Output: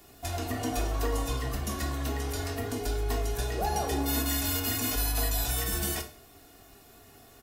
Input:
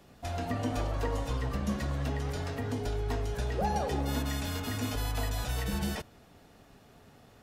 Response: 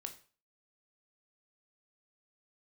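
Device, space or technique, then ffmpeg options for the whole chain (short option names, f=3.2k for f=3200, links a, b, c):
microphone above a desk: -filter_complex "[0:a]aecho=1:1:2.8:0.54[a];[1:a]atrim=start_sample=2205[b];[a][b]afir=irnorm=-1:irlink=0,aemphasis=mode=production:type=50fm,volume=4dB"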